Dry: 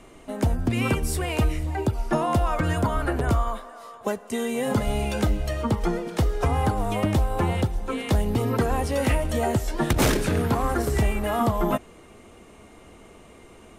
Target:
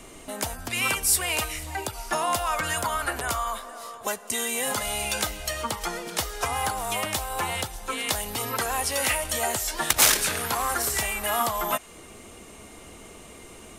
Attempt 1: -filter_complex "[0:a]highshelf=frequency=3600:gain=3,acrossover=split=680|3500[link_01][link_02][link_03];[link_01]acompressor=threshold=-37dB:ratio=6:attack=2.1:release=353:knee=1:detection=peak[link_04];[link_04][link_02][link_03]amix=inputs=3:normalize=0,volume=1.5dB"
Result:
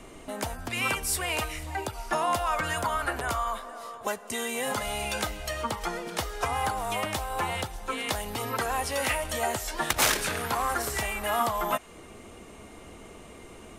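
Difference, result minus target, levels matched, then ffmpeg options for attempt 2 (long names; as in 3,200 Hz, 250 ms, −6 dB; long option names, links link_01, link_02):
8,000 Hz band −4.0 dB
-filter_complex "[0:a]highshelf=frequency=3600:gain=12,acrossover=split=680|3500[link_01][link_02][link_03];[link_01]acompressor=threshold=-37dB:ratio=6:attack=2.1:release=353:knee=1:detection=peak[link_04];[link_04][link_02][link_03]amix=inputs=3:normalize=0,volume=1.5dB"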